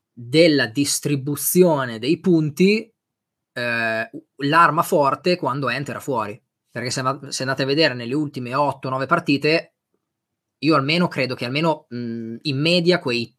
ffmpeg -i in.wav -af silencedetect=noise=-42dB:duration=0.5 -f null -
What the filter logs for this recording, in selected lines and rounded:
silence_start: 2.85
silence_end: 3.56 | silence_duration: 0.71
silence_start: 9.65
silence_end: 10.62 | silence_duration: 0.97